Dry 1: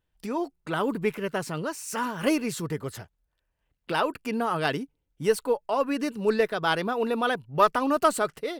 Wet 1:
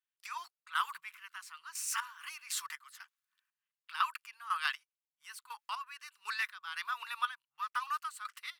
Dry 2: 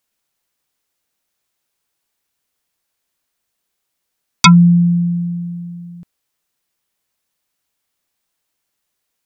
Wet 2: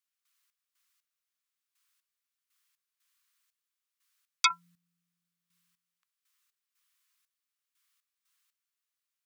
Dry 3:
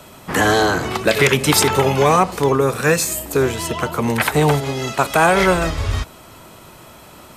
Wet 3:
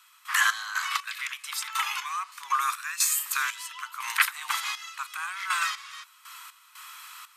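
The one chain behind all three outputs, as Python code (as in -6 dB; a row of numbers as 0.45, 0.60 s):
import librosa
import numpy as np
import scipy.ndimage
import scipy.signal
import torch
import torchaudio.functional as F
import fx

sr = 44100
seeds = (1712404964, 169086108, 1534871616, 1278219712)

y = scipy.signal.sosfilt(scipy.signal.ellip(4, 1.0, 50, 1100.0, 'highpass', fs=sr, output='sos'), x)
y = fx.rider(y, sr, range_db=3, speed_s=0.5)
y = fx.step_gate(y, sr, bpm=60, pattern='.x.x...x..x.xx.', floor_db=-12.0, edge_ms=4.5)
y = y * 10.0 ** (-1.5 / 20.0)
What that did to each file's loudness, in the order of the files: -11.5, -16.0, -11.0 LU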